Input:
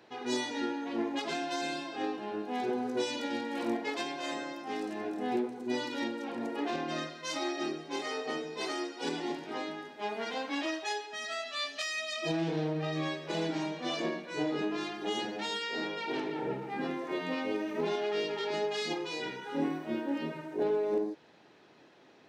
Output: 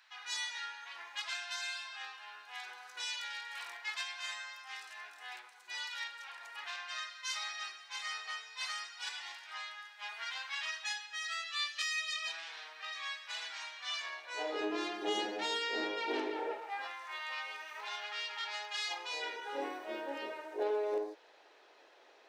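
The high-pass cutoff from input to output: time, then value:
high-pass 24 dB/octave
14.03 s 1.2 kHz
14.73 s 310 Hz
16.24 s 310 Hz
16.99 s 1 kHz
18.75 s 1 kHz
19.37 s 450 Hz

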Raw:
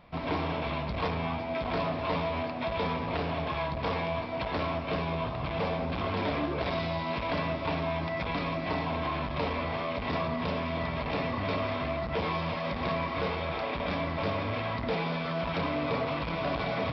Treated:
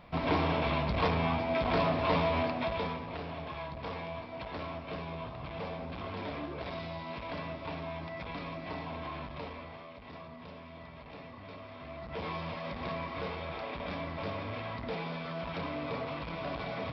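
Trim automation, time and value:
2.50 s +2 dB
3.08 s -8.5 dB
9.22 s -8.5 dB
9.94 s -16.5 dB
11.69 s -16.5 dB
12.27 s -6.5 dB

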